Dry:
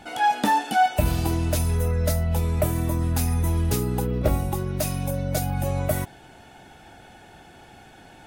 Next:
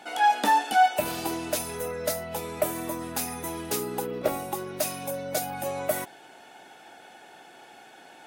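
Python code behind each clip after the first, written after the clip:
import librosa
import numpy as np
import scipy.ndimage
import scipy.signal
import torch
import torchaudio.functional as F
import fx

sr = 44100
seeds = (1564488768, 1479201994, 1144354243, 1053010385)

y = scipy.signal.sosfilt(scipy.signal.butter(2, 360.0, 'highpass', fs=sr, output='sos'), x)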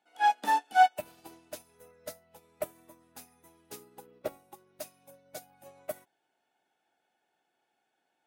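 y = fx.upward_expand(x, sr, threshold_db=-35.0, expansion=2.5)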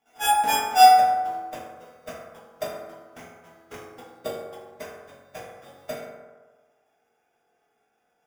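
y = fx.sample_hold(x, sr, seeds[0], rate_hz=4200.0, jitter_pct=0)
y = fx.rev_fdn(y, sr, rt60_s=1.4, lf_ratio=0.8, hf_ratio=0.4, size_ms=13.0, drr_db=-6.0)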